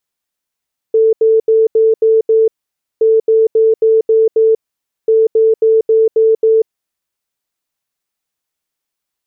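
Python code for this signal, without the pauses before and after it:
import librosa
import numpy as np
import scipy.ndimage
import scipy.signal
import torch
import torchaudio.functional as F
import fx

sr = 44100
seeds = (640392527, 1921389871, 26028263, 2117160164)

y = fx.beep_pattern(sr, wave='sine', hz=444.0, on_s=0.19, off_s=0.08, beeps=6, pause_s=0.53, groups=3, level_db=-6.5)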